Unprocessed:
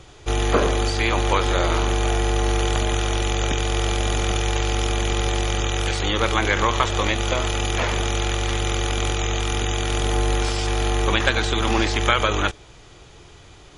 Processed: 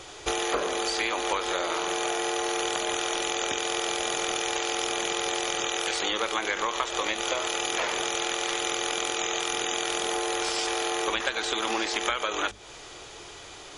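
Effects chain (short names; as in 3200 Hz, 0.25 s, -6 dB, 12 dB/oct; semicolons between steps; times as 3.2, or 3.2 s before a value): tone controls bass -14 dB, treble +3 dB; compressor, threshold -30 dBFS, peak gain reduction 16 dB; notches 50/100/150/200/250 Hz; gain +5 dB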